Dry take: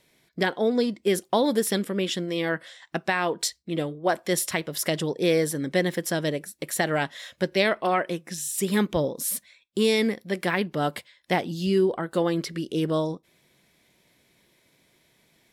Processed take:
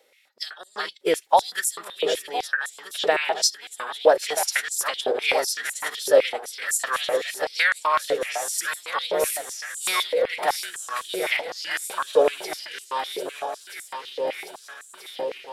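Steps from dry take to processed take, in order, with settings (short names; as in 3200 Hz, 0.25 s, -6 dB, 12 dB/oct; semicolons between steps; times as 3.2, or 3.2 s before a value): regenerating reverse delay 0.641 s, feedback 80%, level -8 dB; formant-preserving pitch shift -3 st; stepped high-pass 7.9 Hz 520–7500 Hz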